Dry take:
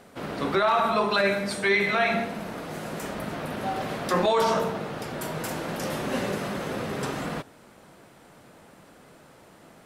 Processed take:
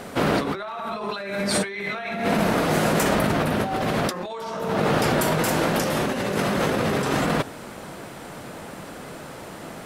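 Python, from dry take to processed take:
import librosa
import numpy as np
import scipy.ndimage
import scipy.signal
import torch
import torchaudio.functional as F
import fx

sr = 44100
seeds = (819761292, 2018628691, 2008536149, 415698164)

y = fx.low_shelf(x, sr, hz=260.0, db=4.0, at=(3.29, 4.06))
y = fx.over_compress(y, sr, threshold_db=-34.0, ratio=-1.0)
y = y * 10.0 ** (9.0 / 20.0)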